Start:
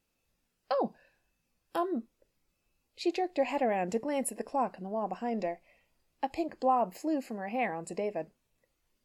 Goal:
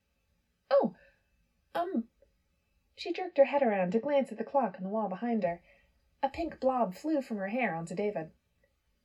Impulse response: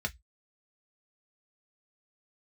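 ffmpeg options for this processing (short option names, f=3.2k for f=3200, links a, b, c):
-filter_complex "[0:a]asettb=1/sr,asplit=3[a][b][c];[a]atrim=end=3.024[d];[b]atrim=start=3.02:end=5.47,asetpts=PTS-STARTPTS,afade=t=in:d=0.004:c=qsin,afade=t=out:st=2.446:d=0.004:c=qsin,highpass=130,lowpass=3.9k[e];[c]atrim=start=5.466[f];[d][e]acrossfade=d=0.004:c1=hsin:c2=qsin[g];[g][f]acrossfade=d=0.004:c1=qsin:c2=hsin[h];[1:a]atrim=start_sample=2205,asetrate=38367,aresample=44100[i];[h][i]afir=irnorm=-1:irlink=0,volume=-3.5dB"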